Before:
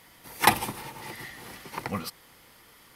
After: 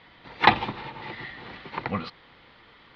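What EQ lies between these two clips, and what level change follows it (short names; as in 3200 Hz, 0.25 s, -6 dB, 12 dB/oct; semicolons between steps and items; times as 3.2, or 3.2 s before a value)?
elliptic low-pass 4000 Hz, stop band 70 dB; +3.5 dB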